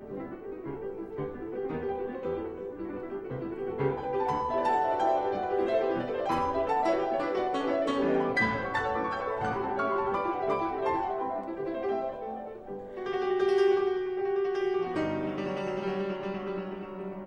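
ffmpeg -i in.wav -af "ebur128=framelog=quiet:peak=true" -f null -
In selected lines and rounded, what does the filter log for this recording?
Integrated loudness:
  I:         -30.5 LUFS
  Threshold: -40.5 LUFS
Loudness range:
  LRA:         5.6 LU
  Threshold: -50.1 LUFS
  LRA low:   -34.0 LUFS
  LRA high:  -28.4 LUFS
True peak:
  Peak:      -15.1 dBFS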